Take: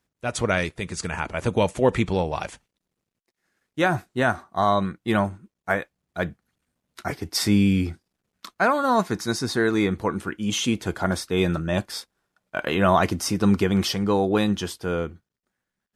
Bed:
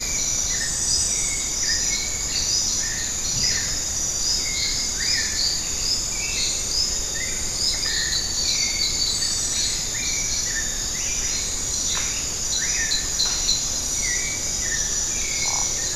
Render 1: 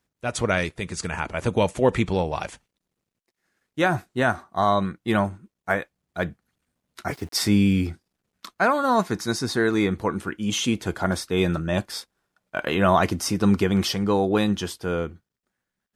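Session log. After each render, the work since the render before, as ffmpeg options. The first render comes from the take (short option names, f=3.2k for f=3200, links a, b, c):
-filter_complex "[0:a]asettb=1/sr,asplit=3[a][b][c];[a]atrim=end=7.104[d];[b]atrim=start=7.1:end=7.87,asetpts=PTS-STARTPTS,afade=t=in:d=0.004:c=qsin,afade=t=out:st=0.766:d=0.004:c=qsin,aeval=exprs='val(0)*gte(abs(val(0)),0.00596)':c=same[e];[c]atrim=start=7.866[f];[d][e]acrossfade=d=0.004:c1=hsin:c2=qsin[g];[g][f]acrossfade=d=0.004:c1=qsin:c2=hsin"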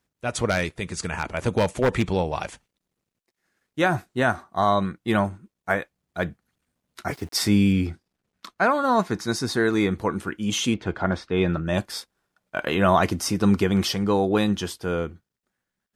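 -filter_complex "[0:a]asettb=1/sr,asplit=3[a][b][c];[a]atrim=end=0.474[d];[b]atrim=start=0.47:end=2.12,asetpts=PTS-STARTPTS,afade=t=in:d=0.004:c=qsin,afade=t=out:st=1.646:d=0.004:c=qsin,aeval=exprs='0.237*(abs(mod(val(0)/0.237+3,4)-2)-1)':c=same[e];[c]atrim=start=2.116[f];[d][e]acrossfade=d=0.004:c1=hsin:c2=qsin[g];[g][f]acrossfade=d=0.004:c1=qsin:c2=hsin,asettb=1/sr,asplit=3[h][i][j];[h]atrim=end=7.724[k];[i]atrim=start=7.72:end=9.32,asetpts=PTS-STARTPTS,afade=t=in:d=0.004:c=qsin,afade=t=out:st=1.596:d=0.004:c=qsin,highshelf=f=7.3k:g=-7[l];[j]atrim=start=9.316[m];[k][l]acrossfade=d=0.004:c1=hsin:c2=qsin[n];[n][m]acrossfade=d=0.004:c1=qsin:c2=hsin,asettb=1/sr,asplit=3[o][p][q];[o]atrim=end=10.744[r];[p]atrim=start=10.74:end=11.67,asetpts=PTS-STARTPTS,afade=t=in:d=0.004:c=qsin,afade=t=out:st=0.926:d=0.004:c=qsin,lowpass=3.1k[s];[q]atrim=start=11.666[t];[r][s]acrossfade=d=0.004:c1=hsin:c2=qsin[u];[u][t]acrossfade=d=0.004:c1=qsin:c2=hsin"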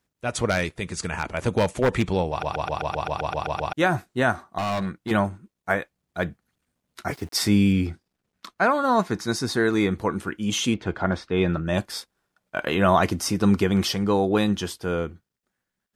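-filter_complex "[0:a]asettb=1/sr,asplit=3[a][b][c];[a]atrim=end=4.584[d];[b]atrim=start=4.58:end=5.11,asetpts=PTS-STARTPTS,afade=t=in:d=0.004:c=qsin,afade=t=out:st=0.526:d=0.004:c=qsin,asoftclip=type=hard:threshold=-23.5dB[e];[c]atrim=start=5.106[f];[d][e]acrossfade=d=0.004:c1=hsin:c2=qsin[g];[g][f]acrossfade=d=0.004:c1=qsin:c2=hsin,asplit=12[h][i][j][k][l][m][n][o][p][q][r][s];[h]atrim=end=2.432[t];[i]atrim=start=2.298:end=2.432[u];[j]atrim=start=2.298:end=2.432[v];[k]atrim=start=2.298:end=2.432[w];[l]atrim=start=2.298:end=2.432[x];[m]atrim=start=2.298:end=2.432[y];[n]atrim=start=2.298:end=2.432[z];[o]atrim=start=2.298:end=2.432[aa];[p]atrim=start=2.298:end=2.432[ab];[q]atrim=start=2.298:end=2.432[ac];[r]atrim=start=2.298:end=2.432[ad];[s]atrim=start=3.728[ae];[t][u]acrossfade=d=0.004:c1=hsin:c2=hsin[af];[af][v]acrossfade=d=0.004:c1=hsin:c2=hsin[ag];[ag][w]acrossfade=d=0.004:c1=hsin:c2=hsin[ah];[ah][x]acrossfade=d=0.004:c1=hsin:c2=hsin[ai];[ai][y]acrossfade=d=0.004:c1=hsin:c2=hsin[aj];[aj][z]acrossfade=d=0.004:c1=hsin:c2=hsin[ak];[ak][aa]acrossfade=d=0.004:c1=hsin:c2=hsin[al];[al][ab]acrossfade=d=0.004:c1=hsin:c2=hsin[am];[am][ac]acrossfade=d=0.004:c1=hsin:c2=hsin[an];[an][ad]acrossfade=d=0.004:c1=hsin:c2=hsin[ao];[ao][ae]acrossfade=d=0.004:c1=hsin:c2=hsin"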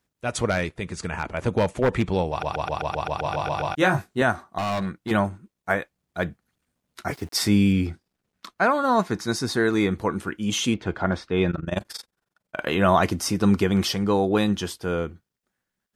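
-filter_complex "[0:a]asettb=1/sr,asplit=3[a][b][c];[a]atrim=end=0.494[d];[b]atrim=start=0.49:end=2.13,asetpts=PTS-STARTPTS,afade=t=in:d=0.004:c=qsin,afade=t=out:st=1.636:d=0.004:c=qsin,highshelf=f=3.5k:g=-7[e];[c]atrim=start=2.126[f];[d][e]acrossfade=d=0.004:c1=hsin:c2=qsin[g];[g][f]acrossfade=d=0.004:c1=qsin:c2=hsin,asettb=1/sr,asplit=3[h][i][j];[h]atrim=end=3.234[k];[i]atrim=start=3.23:end=4.22,asetpts=PTS-STARTPTS,afade=t=in:d=0.004:c=qsin,afade=t=out:st=0.986:d=0.004:c=qsin,asplit=2[l][m];[m]adelay=21,volume=-3dB[n];[l][n]amix=inputs=2:normalize=0,atrim=end_sample=43659[o];[j]atrim=start=4.216[p];[k][o]acrossfade=d=0.004:c1=hsin:c2=qsin[q];[q][p]acrossfade=d=0.004:c1=qsin:c2=hsin,asplit=3[r][s][t];[r]afade=t=out:st=11.5:d=0.02[u];[s]tremolo=f=22:d=0.919,afade=t=in:st=11.5:d=0.02,afade=t=out:st=12.59:d=0.02[v];[t]afade=t=in:st=12.59:d=0.02[w];[u][v][w]amix=inputs=3:normalize=0"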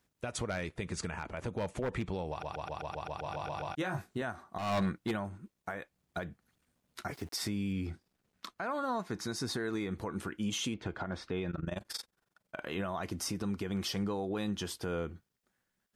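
-af "acompressor=threshold=-28dB:ratio=4,alimiter=level_in=2dB:limit=-24dB:level=0:latency=1:release=229,volume=-2dB"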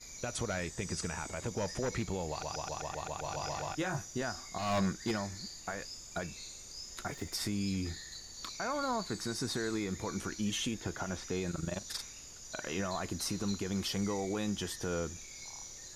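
-filter_complex "[1:a]volume=-24dB[a];[0:a][a]amix=inputs=2:normalize=0"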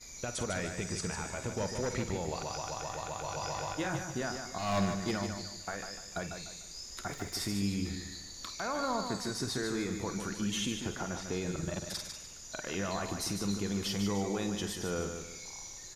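-filter_complex "[0:a]asplit=2[a][b];[b]adelay=50,volume=-12dB[c];[a][c]amix=inputs=2:normalize=0,aecho=1:1:149|298|447|596:0.447|0.161|0.0579|0.0208"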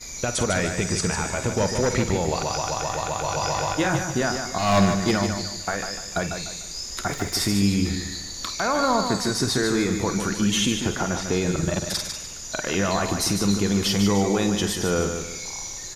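-af "volume=12dB"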